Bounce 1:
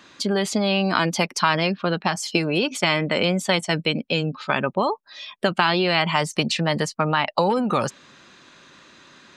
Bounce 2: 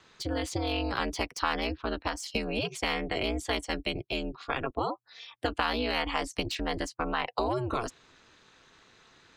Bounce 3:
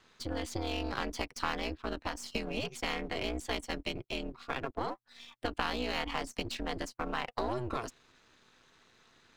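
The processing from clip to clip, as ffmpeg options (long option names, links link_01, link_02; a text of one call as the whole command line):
ffmpeg -i in.wav -filter_complex "[0:a]acrossover=split=200|730|3400[link_01][link_02][link_03][link_04];[link_04]asoftclip=type=hard:threshold=-24.5dB[link_05];[link_01][link_02][link_03][link_05]amix=inputs=4:normalize=0,aeval=exprs='val(0)*sin(2*PI*120*n/s)':channel_layout=same,volume=-6.5dB" out.wav
ffmpeg -i in.wav -af "aeval=exprs='if(lt(val(0),0),0.447*val(0),val(0))':channel_layout=same,volume=-2.5dB" out.wav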